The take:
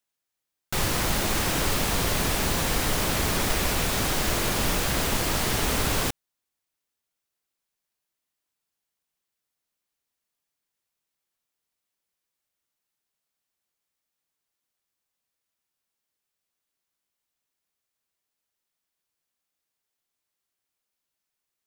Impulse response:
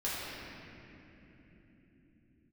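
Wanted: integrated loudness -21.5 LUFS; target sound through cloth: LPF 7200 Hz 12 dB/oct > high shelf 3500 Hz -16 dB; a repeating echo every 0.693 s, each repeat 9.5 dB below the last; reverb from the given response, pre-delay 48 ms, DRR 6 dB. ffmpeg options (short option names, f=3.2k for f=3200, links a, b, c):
-filter_complex "[0:a]aecho=1:1:693|1386|2079|2772:0.335|0.111|0.0365|0.012,asplit=2[a][b];[1:a]atrim=start_sample=2205,adelay=48[c];[b][c]afir=irnorm=-1:irlink=0,volume=-12.5dB[d];[a][d]amix=inputs=2:normalize=0,lowpass=7.2k,highshelf=f=3.5k:g=-16,volume=6dB"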